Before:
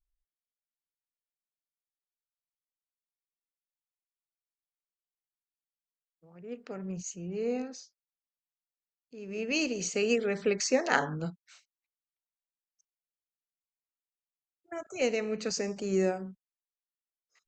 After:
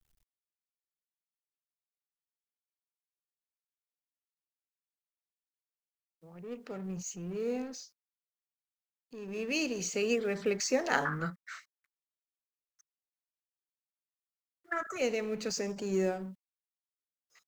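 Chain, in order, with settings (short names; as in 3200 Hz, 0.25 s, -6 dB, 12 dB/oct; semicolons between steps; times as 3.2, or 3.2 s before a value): G.711 law mismatch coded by mu; 11.05–14.98 band shelf 1500 Hz +15.5 dB 1.1 oct; gain -3.5 dB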